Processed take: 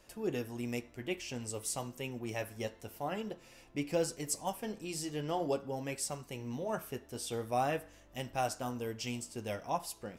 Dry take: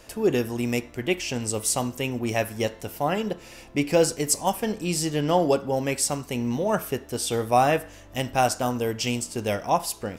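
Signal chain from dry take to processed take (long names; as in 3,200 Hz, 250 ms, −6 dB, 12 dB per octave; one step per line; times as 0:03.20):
flanger 0.49 Hz, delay 5.1 ms, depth 4.3 ms, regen −55%
level −8.5 dB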